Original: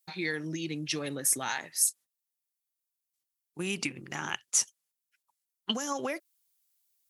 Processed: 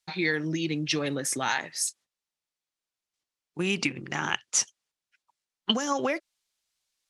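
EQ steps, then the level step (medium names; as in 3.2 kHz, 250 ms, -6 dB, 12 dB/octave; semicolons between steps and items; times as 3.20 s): low-pass 5.5 kHz 12 dB/octave; +6.0 dB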